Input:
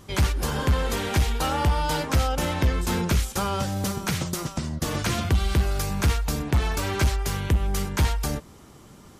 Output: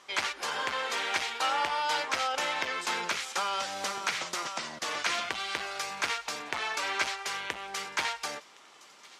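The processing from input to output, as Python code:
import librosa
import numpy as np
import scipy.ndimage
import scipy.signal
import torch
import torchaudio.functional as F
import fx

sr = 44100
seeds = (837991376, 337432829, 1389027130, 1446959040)

y = fx.bandpass_edges(x, sr, low_hz=800.0, high_hz=6000.0)
y = fx.peak_eq(y, sr, hz=2200.0, db=3.0, octaves=0.53)
y = fx.echo_wet_highpass(y, sr, ms=1064, feedback_pct=55, hz=3100.0, wet_db=-19.0)
y = fx.band_squash(y, sr, depth_pct=70, at=(2.34, 4.79))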